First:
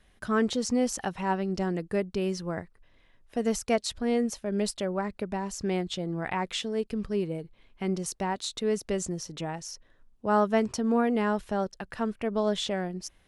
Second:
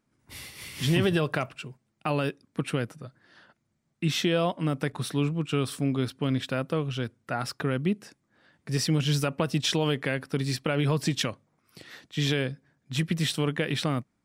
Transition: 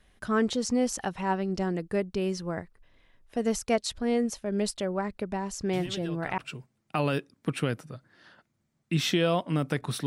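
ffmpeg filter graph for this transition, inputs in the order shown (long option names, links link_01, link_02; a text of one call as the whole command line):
ffmpeg -i cue0.wav -i cue1.wav -filter_complex "[1:a]asplit=2[link_01][link_02];[0:a]apad=whole_dur=10.06,atrim=end=10.06,atrim=end=6.382[link_03];[link_02]atrim=start=1.488:end=5.17[link_04];[link_01]atrim=start=0.84:end=1.49,asetpts=PTS-STARTPTS,volume=-15dB,afade=type=in:duration=0.004:curve=hsin,afade=type=out:start_time=0.646:duration=0.004:curve=hsin,adelay=252693S[link_05];[link_03][link_04]acrossfade=duration=0.004:curve1=hsin:curve2=hsin[link_06];[link_06][link_05]amix=inputs=2:normalize=0" out.wav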